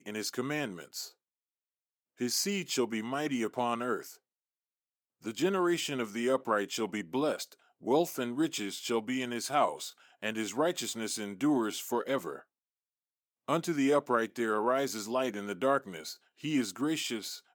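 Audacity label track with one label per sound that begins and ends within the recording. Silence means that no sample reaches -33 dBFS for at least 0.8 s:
2.210000	3.990000	sound
5.260000	12.360000	sound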